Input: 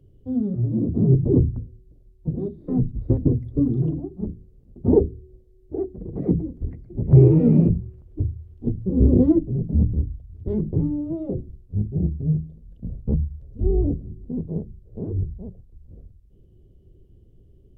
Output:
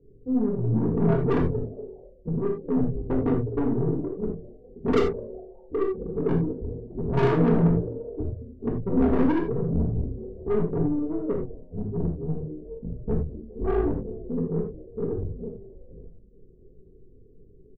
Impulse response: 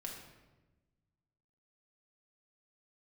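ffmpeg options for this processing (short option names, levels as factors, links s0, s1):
-filter_complex "[0:a]asplit=4[s0][s1][s2][s3];[s1]adelay=206,afreqshift=150,volume=0.0708[s4];[s2]adelay=412,afreqshift=300,volume=0.0363[s5];[s3]adelay=618,afreqshift=450,volume=0.0184[s6];[s0][s4][s5][s6]amix=inputs=4:normalize=0,asplit=2[s7][s8];[s8]acrusher=bits=4:mode=log:mix=0:aa=0.000001,volume=0.501[s9];[s7][s9]amix=inputs=2:normalize=0,lowpass=f=430:t=q:w=4.9,aresample=16000,asoftclip=type=tanh:threshold=0.282,aresample=44100,aeval=exprs='0.316*(cos(1*acos(clip(val(0)/0.316,-1,1)))-cos(1*PI/2))+0.0112*(cos(4*acos(clip(val(0)/0.316,-1,1)))-cos(4*PI/2))':c=same[s10];[1:a]atrim=start_sample=2205,atrim=end_sample=4410[s11];[s10][s11]afir=irnorm=-1:irlink=0,volume=0.596"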